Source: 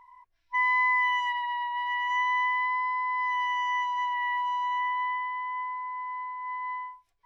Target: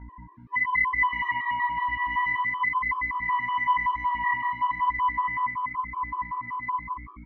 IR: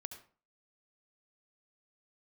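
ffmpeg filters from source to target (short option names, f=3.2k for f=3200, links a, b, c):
-filter_complex "[0:a]lowpass=2.2k,equalizer=f=1.6k:t=o:w=0.67:g=10.5,acompressor=threshold=-24dB:ratio=6,aeval=exprs='val(0)+0.00562*(sin(2*PI*60*n/s)+sin(2*PI*2*60*n/s)/2+sin(2*PI*3*60*n/s)/3+sin(2*PI*4*60*n/s)/4+sin(2*PI*5*60*n/s)/5)':c=same,flanger=delay=20:depth=5.7:speed=0.99,asplit=7[a][b][c][d][e][f][g];[b]adelay=109,afreqshift=50,volume=-18dB[h];[c]adelay=218,afreqshift=100,volume=-21.9dB[i];[d]adelay=327,afreqshift=150,volume=-25.8dB[j];[e]adelay=436,afreqshift=200,volume=-29.6dB[k];[f]adelay=545,afreqshift=250,volume=-33.5dB[l];[g]adelay=654,afreqshift=300,volume=-37.4dB[m];[a][h][i][j][k][l][m]amix=inputs=7:normalize=0,asplit=2[n][o];[1:a]atrim=start_sample=2205,adelay=97[p];[o][p]afir=irnorm=-1:irlink=0,volume=-2dB[q];[n][q]amix=inputs=2:normalize=0,afftfilt=real='re*gt(sin(2*PI*5.3*pts/sr)*(1-2*mod(floor(b*sr/1024/330),2)),0)':imag='im*gt(sin(2*PI*5.3*pts/sr)*(1-2*mod(floor(b*sr/1024/330),2)),0)':win_size=1024:overlap=0.75,volume=7.5dB"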